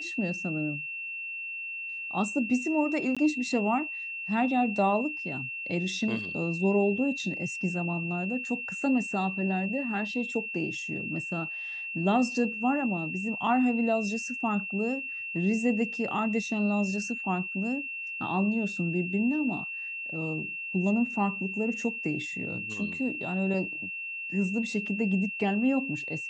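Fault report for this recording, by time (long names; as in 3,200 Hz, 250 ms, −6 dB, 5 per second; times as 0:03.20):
whistle 2,700 Hz −34 dBFS
0:03.15–0:03.17: drop-out 16 ms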